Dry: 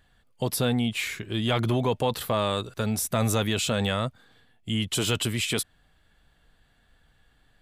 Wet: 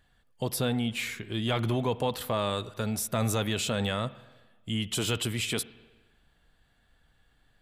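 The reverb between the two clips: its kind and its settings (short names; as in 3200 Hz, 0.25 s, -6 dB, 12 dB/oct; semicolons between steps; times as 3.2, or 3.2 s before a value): spring tank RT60 1.2 s, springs 44/59 ms, chirp 65 ms, DRR 16.5 dB; gain -3.5 dB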